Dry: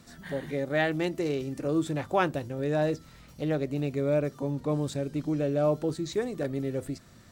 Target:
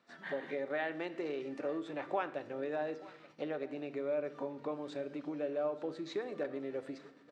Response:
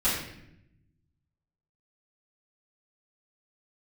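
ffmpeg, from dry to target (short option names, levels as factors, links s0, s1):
-filter_complex "[0:a]acompressor=threshold=0.0251:ratio=6,aecho=1:1:882:0.1,agate=range=0.251:threshold=0.00316:ratio=16:detection=peak,highpass=420,lowpass=2800,asplit=2[s0][s1];[1:a]atrim=start_sample=2205[s2];[s1][s2]afir=irnorm=-1:irlink=0,volume=0.0794[s3];[s0][s3]amix=inputs=2:normalize=0,volume=1.12"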